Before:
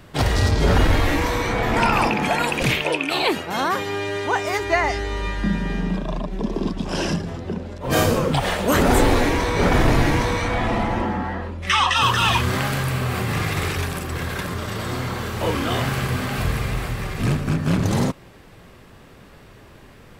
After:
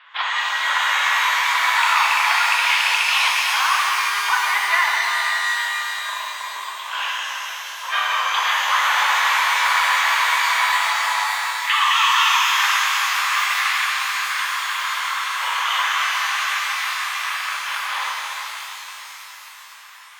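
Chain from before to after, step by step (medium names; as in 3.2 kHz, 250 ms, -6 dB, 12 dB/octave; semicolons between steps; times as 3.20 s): elliptic band-pass 1–3.5 kHz, stop band 60 dB; compression, threshold -22 dBFS, peak gain reduction 7.5 dB; pitch-shifted reverb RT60 4 s, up +12 st, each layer -8 dB, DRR -3 dB; trim +4.5 dB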